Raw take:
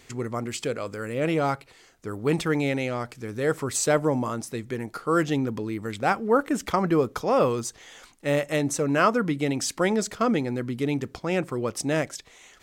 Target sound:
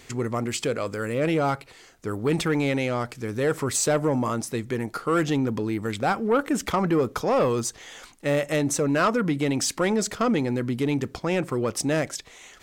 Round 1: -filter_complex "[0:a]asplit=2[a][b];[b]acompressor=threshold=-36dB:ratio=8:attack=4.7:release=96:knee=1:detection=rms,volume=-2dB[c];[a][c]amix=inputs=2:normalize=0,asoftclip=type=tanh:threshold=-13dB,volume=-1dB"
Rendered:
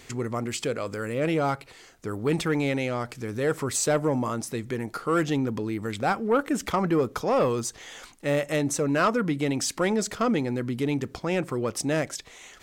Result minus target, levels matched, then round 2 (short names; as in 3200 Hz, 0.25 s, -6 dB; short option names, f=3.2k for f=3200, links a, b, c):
compressor: peak gain reduction +10 dB
-filter_complex "[0:a]asplit=2[a][b];[b]acompressor=threshold=-24.5dB:ratio=8:attack=4.7:release=96:knee=1:detection=rms,volume=-2dB[c];[a][c]amix=inputs=2:normalize=0,asoftclip=type=tanh:threshold=-13dB,volume=-1dB"